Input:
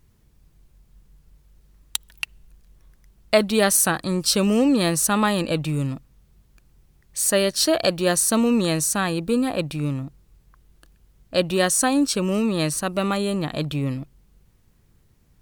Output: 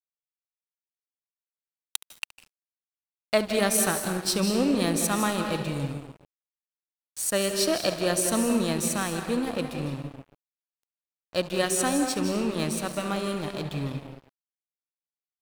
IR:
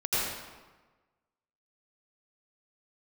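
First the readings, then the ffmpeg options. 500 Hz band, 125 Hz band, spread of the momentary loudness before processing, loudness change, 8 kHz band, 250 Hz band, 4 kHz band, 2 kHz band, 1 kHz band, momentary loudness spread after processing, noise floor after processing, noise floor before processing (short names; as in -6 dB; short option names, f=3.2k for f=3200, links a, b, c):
-5.0 dB, -6.0 dB, 12 LU, -5.0 dB, -5.5 dB, -5.5 dB, -5.0 dB, -5.0 dB, -4.5 dB, 13 LU, under -85 dBFS, -60 dBFS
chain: -filter_complex "[0:a]asplit=2[a][b];[1:a]atrim=start_sample=2205,adelay=71[c];[b][c]afir=irnorm=-1:irlink=0,volume=-14.5dB[d];[a][d]amix=inputs=2:normalize=0,aeval=exprs='sgn(val(0))*max(abs(val(0))-0.0266,0)':c=same,volume=-5dB"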